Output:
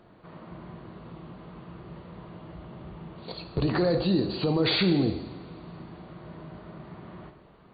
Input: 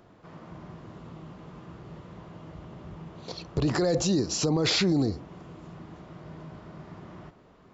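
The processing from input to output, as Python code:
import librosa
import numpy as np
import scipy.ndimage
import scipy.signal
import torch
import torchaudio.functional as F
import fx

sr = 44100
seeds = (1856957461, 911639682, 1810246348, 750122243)

y = fx.brickwall_lowpass(x, sr, high_hz=4700.0)
y = fx.rev_double_slope(y, sr, seeds[0], early_s=0.99, late_s=3.1, knee_db=-18, drr_db=6.5)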